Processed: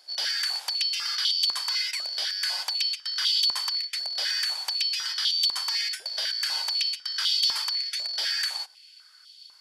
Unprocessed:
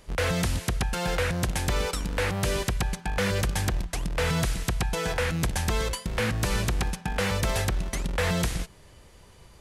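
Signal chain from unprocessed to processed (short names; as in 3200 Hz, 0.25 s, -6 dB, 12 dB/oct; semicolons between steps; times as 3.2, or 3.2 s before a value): four-band scrambler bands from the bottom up 4321; stepped high-pass 4 Hz 640–3300 Hz; gain -4 dB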